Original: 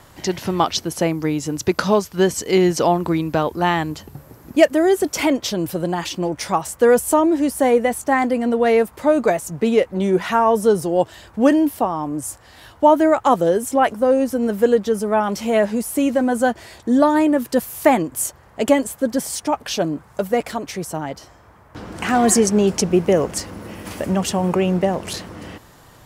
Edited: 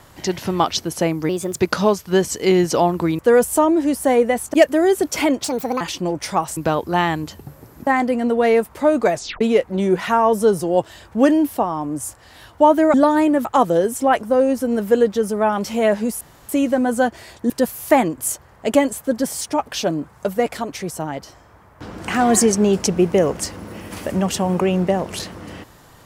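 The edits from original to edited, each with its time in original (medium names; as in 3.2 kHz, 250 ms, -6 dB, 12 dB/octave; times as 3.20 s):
1.29–1.65 s: speed 121%
3.25–4.55 s: swap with 6.74–8.09 s
5.45–5.98 s: speed 143%
9.35 s: tape stop 0.28 s
15.92 s: insert room tone 0.28 s
16.93–17.44 s: move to 13.16 s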